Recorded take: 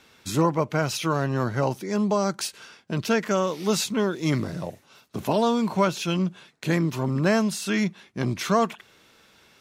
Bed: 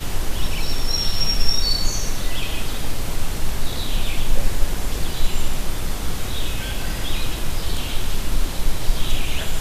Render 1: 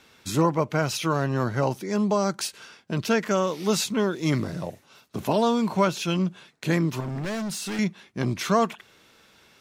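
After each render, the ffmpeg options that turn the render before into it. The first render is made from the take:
ffmpeg -i in.wav -filter_complex "[0:a]asettb=1/sr,asplit=3[link_01][link_02][link_03];[link_01]atrim=end=7.004[link_04];[link_02]atrim=start=7:end=7.79,asetpts=PTS-STARTPTS,afade=type=in:duration=0.004:curve=qsin,afade=type=out:start_time=0.786:duration=0.004:curve=qsin,volume=28dB,asoftclip=hard,volume=-28dB[link_05];[link_03]atrim=start=7.786[link_06];[link_04][link_05]acrossfade=duration=0.004:curve1=hsin:curve2=qsin[link_07];[link_07][link_06]acrossfade=duration=0.004:curve1=qsin:curve2=hsin" out.wav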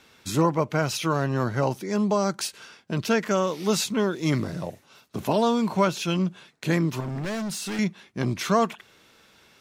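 ffmpeg -i in.wav -af anull out.wav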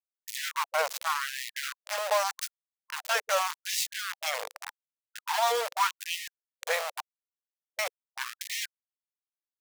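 ffmpeg -i in.wav -af "aeval=exprs='val(0)*gte(abs(val(0)),0.0708)':channel_layout=same,afftfilt=real='re*gte(b*sr/1024,450*pow(1800/450,0.5+0.5*sin(2*PI*0.85*pts/sr)))':imag='im*gte(b*sr/1024,450*pow(1800/450,0.5+0.5*sin(2*PI*0.85*pts/sr)))':win_size=1024:overlap=0.75" out.wav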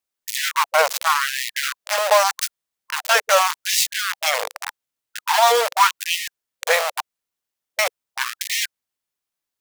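ffmpeg -i in.wav -af "volume=11dB" out.wav

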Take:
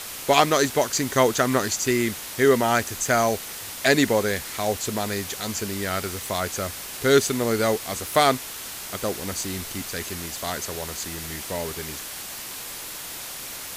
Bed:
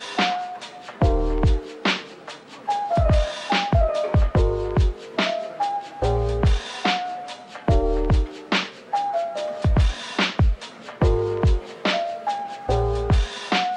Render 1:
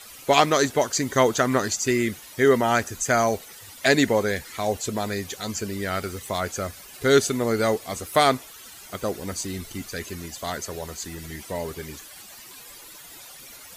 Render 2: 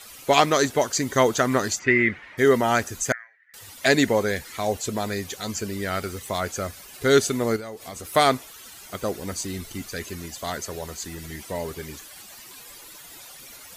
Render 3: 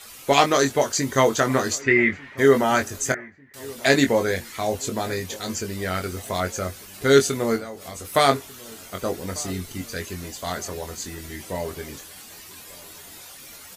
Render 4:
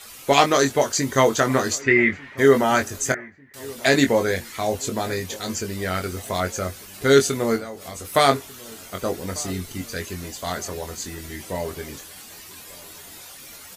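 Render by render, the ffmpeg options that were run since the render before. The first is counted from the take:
ffmpeg -i in.wav -af "afftdn=noise_reduction=13:noise_floor=-36" out.wav
ffmpeg -i in.wav -filter_complex "[0:a]asplit=3[link_01][link_02][link_03];[link_01]afade=type=out:start_time=1.78:duration=0.02[link_04];[link_02]lowpass=frequency=2000:width_type=q:width=3.5,afade=type=in:start_time=1.78:duration=0.02,afade=type=out:start_time=2.37:duration=0.02[link_05];[link_03]afade=type=in:start_time=2.37:duration=0.02[link_06];[link_04][link_05][link_06]amix=inputs=3:normalize=0,asettb=1/sr,asplit=3[link_07][link_08][link_09];[link_07]atrim=end=3.124[link_10];[link_08]atrim=start=3.12:end=3.54,asetpts=PTS-STARTPTS,afade=type=in:duration=0.004:curve=qsin,afade=type=out:start_time=0.416:duration=0.004:curve=qsin,asuperpass=centerf=1800:order=4:qfactor=5.9[link_11];[link_09]atrim=start=3.536[link_12];[link_10][link_11]acrossfade=duration=0.004:curve1=hsin:curve2=qsin[link_13];[link_13][link_12]acrossfade=duration=0.004:curve1=qsin:curve2=hsin,asettb=1/sr,asplit=3[link_14][link_15][link_16];[link_14]atrim=end=7.564[link_17];[link_15]atrim=start=7.56:end=8.05,asetpts=PTS-STARTPTS,afade=type=in:duration=0.004:curve=qsin,afade=type=out:start_time=0.486:duration=0.004:curve=qsin,acompressor=threshold=-32dB:ratio=10:attack=3.2:release=140:knee=1:detection=peak[link_18];[link_16]atrim=start=8.046[link_19];[link_17][link_18]acrossfade=duration=0.004:curve1=hsin:curve2=qsin[link_20];[link_20][link_19]acrossfade=duration=0.004:curve1=qsin:curve2=hsin" out.wav
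ffmpeg -i in.wav -filter_complex "[0:a]asplit=2[link_01][link_02];[link_02]adelay=22,volume=-6dB[link_03];[link_01][link_03]amix=inputs=2:normalize=0,asplit=2[link_04][link_05];[link_05]adelay=1195,lowpass=frequency=1300:poles=1,volume=-21dB,asplit=2[link_06][link_07];[link_07]adelay=1195,lowpass=frequency=1300:poles=1,volume=0.53,asplit=2[link_08][link_09];[link_09]adelay=1195,lowpass=frequency=1300:poles=1,volume=0.53,asplit=2[link_10][link_11];[link_11]adelay=1195,lowpass=frequency=1300:poles=1,volume=0.53[link_12];[link_04][link_06][link_08][link_10][link_12]amix=inputs=5:normalize=0" out.wav
ffmpeg -i in.wav -af "volume=1dB,alimiter=limit=-3dB:level=0:latency=1" out.wav

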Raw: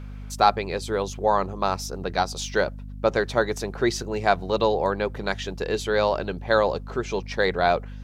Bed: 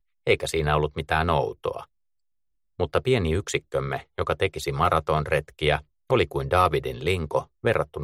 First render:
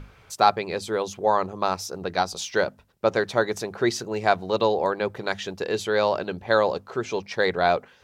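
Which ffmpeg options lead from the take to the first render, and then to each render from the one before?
ffmpeg -i in.wav -af "bandreject=frequency=50:width_type=h:width=6,bandreject=frequency=100:width_type=h:width=6,bandreject=frequency=150:width_type=h:width=6,bandreject=frequency=200:width_type=h:width=6,bandreject=frequency=250:width_type=h:width=6" out.wav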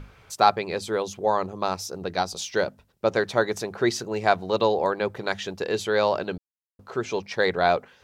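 ffmpeg -i in.wav -filter_complex "[0:a]asettb=1/sr,asplit=3[link_01][link_02][link_03];[link_01]atrim=end=1.004[link_04];[link_02]atrim=start=1:end=3.15,asetpts=PTS-STARTPTS,afade=type=in:duration=0.004:curve=qsin,afade=type=out:start_time=2.146:duration=0.004:curve=qsin,equalizer=frequency=1300:width=0.66:gain=-3[link_05];[link_03]atrim=start=3.146[link_06];[link_04][link_05]acrossfade=duration=0.004:curve1=hsin:curve2=qsin[link_07];[link_07][link_06]acrossfade=duration=0.004:curve1=qsin:curve2=hsin,asplit=3[link_08][link_09][link_10];[link_08]atrim=end=6.38,asetpts=PTS-STARTPTS,afade=type=out:start_time=6.376:duration=0.004:curve=hsin[link_11];[link_09]atrim=start=6.38:end=6.79,asetpts=PTS-STARTPTS,volume=0[link_12];[link_10]atrim=start=6.79,asetpts=PTS-STARTPTS,afade=type=in:duration=0.004:curve=hsin[link_13];[link_11][link_12][link_13]concat=n=3:v=0:a=1" out.wav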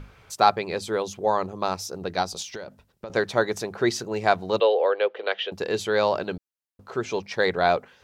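ffmpeg -i in.wav -filter_complex "[0:a]asettb=1/sr,asplit=3[link_01][link_02][link_03];[link_01]atrim=end=2.424[link_04];[link_02]atrim=start=2.42:end=3.1,asetpts=PTS-STARTPTS,afade=type=in:duration=0.004:curve=qsin,afade=type=out:start_time=0.676:duration=0.004:curve=qsin,acompressor=threshold=-32dB:ratio=10:attack=3.2:release=140:knee=1:detection=peak[link_05];[link_03]atrim=start=3.096[link_06];[link_04][link_05]acrossfade=duration=0.004:curve1=hsin:curve2=qsin[link_07];[link_07][link_06]acrossfade=duration=0.004:curve1=qsin:curve2=hsin,asettb=1/sr,asplit=3[link_08][link_09][link_10];[link_08]atrim=end=4.604[link_11];[link_09]atrim=start=4.6:end=5.52,asetpts=PTS-STARTPTS,afade=type=in:duration=0.004:curve=qsin,afade=type=out:start_time=0.916:duration=0.004:curve=qsin,highpass=frequency=420:width=0.5412,highpass=frequency=420:width=1.3066,equalizer=frequency=490:width_type=q:width=4:gain=8,equalizer=frequency=930:width_type=q:width=4:gain=-6,equalizer=frequency=3000:width_type=q:width=4:gain=10,lowpass=frequency=3700:width=0.5412,lowpass=frequency=3700:width=1.3066[link_12];[link_10]atrim=start=5.516[link_13];[link_11][link_12]acrossfade=duration=0.004:curve1=hsin:curve2=qsin[link_14];[link_14][link_13]acrossfade=duration=0.004:curve1=qsin:curve2=hsin" out.wav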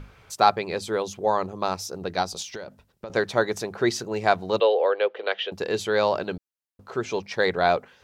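ffmpeg -i in.wav -af anull out.wav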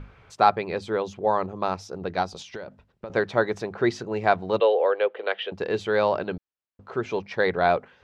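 ffmpeg -i in.wav -af "lowpass=8200,bass=frequency=250:gain=1,treble=frequency=4000:gain=-12" out.wav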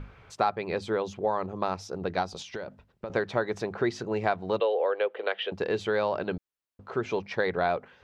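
ffmpeg -i in.wav -af "acompressor=threshold=-24dB:ratio=3" out.wav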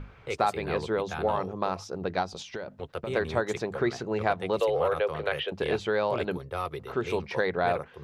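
ffmpeg -i in.wav -i bed.wav -filter_complex "[1:a]volume=-13dB[link_01];[0:a][link_01]amix=inputs=2:normalize=0" out.wav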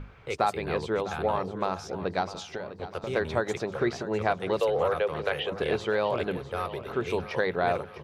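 ffmpeg -i in.wav -af "aecho=1:1:652|1304|1956|2608|3260:0.2|0.0998|0.0499|0.0249|0.0125" out.wav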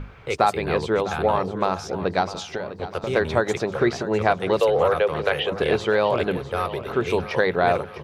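ffmpeg -i in.wav -af "volume=6.5dB" out.wav

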